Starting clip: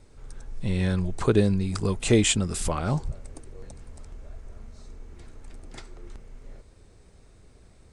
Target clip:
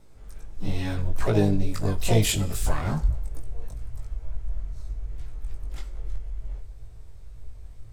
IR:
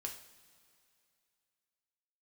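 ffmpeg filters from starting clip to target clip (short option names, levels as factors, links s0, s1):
-filter_complex "[0:a]asplit=3[s0][s1][s2];[s1]asetrate=66075,aresample=44100,atempo=0.66742,volume=0.562[s3];[s2]asetrate=88200,aresample=44100,atempo=0.5,volume=0.158[s4];[s0][s3][s4]amix=inputs=3:normalize=0,flanger=delay=18:depth=2.6:speed=2.3,asubboost=boost=7:cutoff=82,asplit=2[s5][s6];[1:a]atrim=start_sample=2205,afade=t=out:st=0.36:d=0.01,atrim=end_sample=16317[s7];[s6][s7]afir=irnorm=-1:irlink=0,volume=0.668[s8];[s5][s8]amix=inputs=2:normalize=0,volume=0.668"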